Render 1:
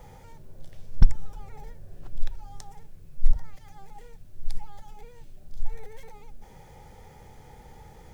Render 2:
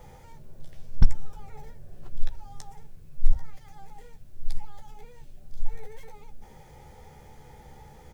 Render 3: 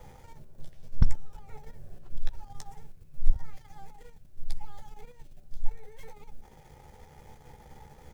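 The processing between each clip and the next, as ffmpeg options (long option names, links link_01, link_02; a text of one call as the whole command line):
ffmpeg -i in.wav -filter_complex "[0:a]asplit=2[link_01][link_02];[link_02]adelay=14,volume=-7.5dB[link_03];[link_01][link_03]amix=inputs=2:normalize=0,volume=-1dB" out.wav
ffmpeg -i in.wav -af "aeval=exprs='if(lt(val(0),0),0.447*val(0),val(0))':channel_layout=same" out.wav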